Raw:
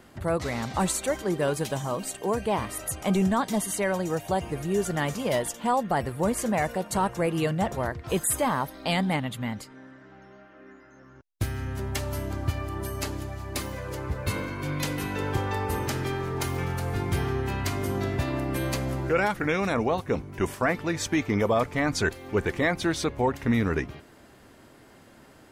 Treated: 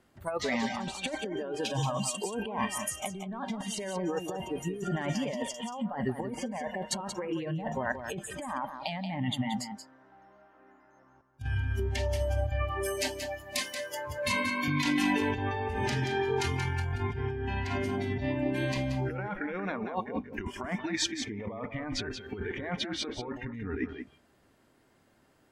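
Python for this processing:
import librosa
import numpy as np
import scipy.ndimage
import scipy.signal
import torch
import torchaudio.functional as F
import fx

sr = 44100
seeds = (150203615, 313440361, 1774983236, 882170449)

y = fx.noise_reduce_blind(x, sr, reduce_db=21)
y = fx.highpass(y, sr, hz=230.0, slope=12, at=(13.43, 14.68))
y = fx.env_lowpass_down(y, sr, base_hz=1700.0, full_db=-22.5)
y = fx.peak_eq(y, sr, hz=840.0, db=13.0, octaves=1.0, at=(9.37, 11.55))
y = fx.over_compress(y, sr, threshold_db=-35.0, ratio=-1.0)
y = y + 10.0 ** (-8.5 / 20.0) * np.pad(y, (int(180 * sr / 1000.0), 0))[:len(y)]
y = F.gain(torch.from_numpy(y), 2.0).numpy()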